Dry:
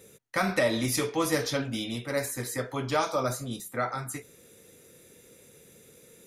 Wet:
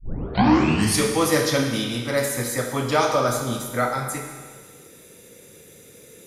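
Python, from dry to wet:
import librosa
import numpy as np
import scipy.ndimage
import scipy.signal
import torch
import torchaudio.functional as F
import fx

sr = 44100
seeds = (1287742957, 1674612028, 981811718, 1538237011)

y = fx.tape_start_head(x, sr, length_s=1.01)
y = fx.rev_schroeder(y, sr, rt60_s=1.6, comb_ms=26, drr_db=3.5)
y = y * librosa.db_to_amplitude(6.0)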